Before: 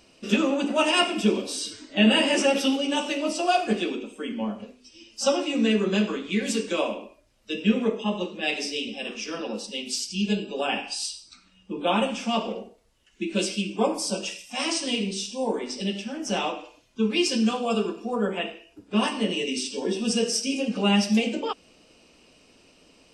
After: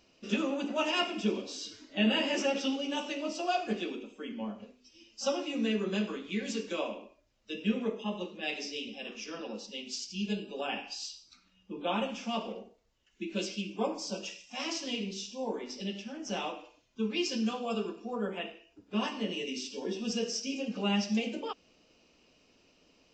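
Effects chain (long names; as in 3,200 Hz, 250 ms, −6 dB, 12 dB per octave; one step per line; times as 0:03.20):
downsampling to 16,000 Hz
level −8.5 dB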